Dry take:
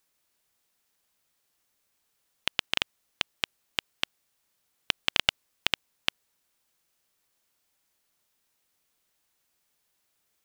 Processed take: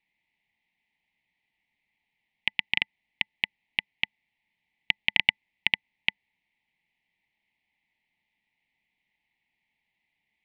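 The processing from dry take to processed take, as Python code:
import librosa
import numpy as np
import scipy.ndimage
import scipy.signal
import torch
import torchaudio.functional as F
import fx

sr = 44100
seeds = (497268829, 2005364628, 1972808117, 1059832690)

y = fx.curve_eq(x, sr, hz=(110.0, 200.0, 550.0, 880.0, 1400.0, 2000.0, 3900.0, 7300.0), db=(0, 5, -11, 5, -30, 14, -5, -29))
y = F.gain(torch.from_numpy(y), -2.5).numpy()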